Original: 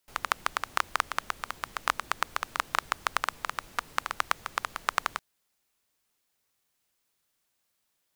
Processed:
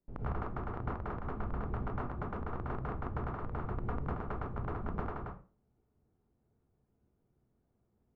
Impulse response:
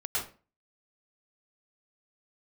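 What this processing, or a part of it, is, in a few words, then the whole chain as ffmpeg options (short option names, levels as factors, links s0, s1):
television next door: -filter_complex "[0:a]acompressor=threshold=0.0282:ratio=6,lowpass=270[s0];[1:a]atrim=start_sample=2205[s1];[s0][s1]afir=irnorm=-1:irlink=0,volume=5.31"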